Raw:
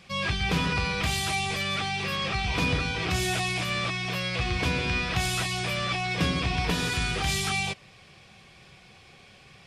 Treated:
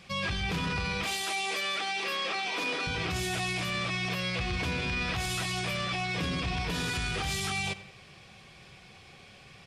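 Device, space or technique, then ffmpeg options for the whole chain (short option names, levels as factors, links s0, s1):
soft clipper into limiter: -filter_complex "[0:a]asettb=1/sr,asplit=3[s0][s1][s2];[s0]atrim=end=1.044[s3];[s1]atrim=start=1.04:end=2.87,asetpts=PTS-STARTPTS,afade=t=in:d=0.004:c=qsin,afade=t=out:st=1.826:d=0.004:c=qsin,highpass=f=290:w=0.5412,highpass=f=290:w=1.3066[s4];[s2]atrim=start=2.866[s5];[s3][s4]acrossfade=d=0.004:c1=hsin:c2=qsin[s6];[s6][s5]acrossfade=d=0.004:c1=qsin:c2=hsin,asoftclip=type=tanh:threshold=0.188,alimiter=limit=0.0631:level=0:latency=1:release=25,asplit=2[s7][s8];[s8]adelay=93,lowpass=f=3800:p=1,volume=0.178,asplit=2[s9][s10];[s10]adelay=93,lowpass=f=3800:p=1,volume=0.5,asplit=2[s11][s12];[s12]adelay=93,lowpass=f=3800:p=1,volume=0.5,asplit=2[s13][s14];[s14]adelay=93,lowpass=f=3800:p=1,volume=0.5,asplit=2[s15][s16];[s16]adelay=93,lowpass=f=3800:p=1,volume=0.5[s17];[s7][s9][s11][s13][s15][s17]amix=inputs=6:normalize=0"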